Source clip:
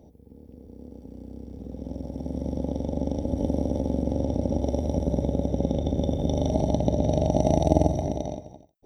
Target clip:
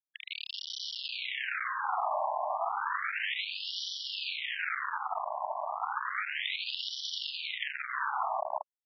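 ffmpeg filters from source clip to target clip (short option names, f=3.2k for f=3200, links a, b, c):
-filter_complex "[0:a]highpass=f=43:w=0.5412,highpass=f=43:w=1.3066,bass=f=250:g=-9,treble=f=4k:g=-14,asplit=2[a][b];[b]acompressor=threshold=-41dB:ratio=6,volume=-1dB[c];[a][c]amix=inputs=2:normalize=0,asuperstop=centerf=770:order=12:qfactor=0.68,lowshelf=f=470:g=10.5,asplit=2[d][e];[e]adelay=361.5,volume=-25dB,highshelf=f=4k:g=-8.13[f];[d][f]amix=inputs=2:normalize=0,acrossover=split=140|1600[g][h][i];[i]adynamicsmooth=sensitivity=6:basefreq=2.7k[j];[g][h][j]amix=inputs=3:normalize=0,aeval=exprs='val(0)*gte(abs(val(0)),0.0168)':c=same,alimiter=level_in=14.5dB:limit=-1dB:release=50:level=0:latency=1,afftfilt=real='re*between(b*sr/1024,790*pow(4200/790,0.5+0.5*sin(2*PI*0.32*pts/sr))/1.41,790*pow(4200/790,0.5+0.5*sin(2*PI*0.32*pts/sr))*1.41)':imag='im*between(b*sr/1024,790*pow(4200/790,0.5+0.5*sin(2*PI*0.32*pts/sr))/1.41,790*pow(4200/790,0.5+0.5*sin(2*PI*0.32*pts/sr))*1.41)':win_size=1024:overlap=0.75,volume=5.5dB"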